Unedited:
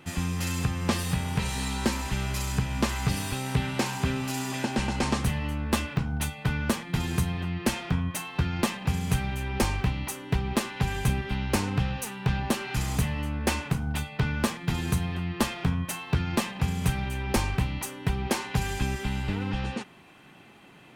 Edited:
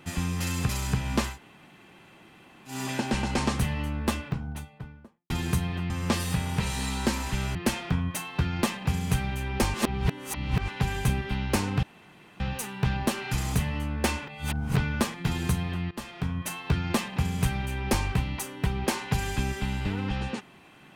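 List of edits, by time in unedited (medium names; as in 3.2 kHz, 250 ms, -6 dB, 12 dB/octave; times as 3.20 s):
0.69–2.34 s: move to 7.55 s
2.96–4.38 s: room tone, crossfade 0.16 s
5.42–6.95 s: studio fade out
9.74–10.68 s: reverse
11.83 s: insert room tone 0.57 s
13.71–14.19 s: reverse
15.34–15.96 s: fade in, from -16.5 dB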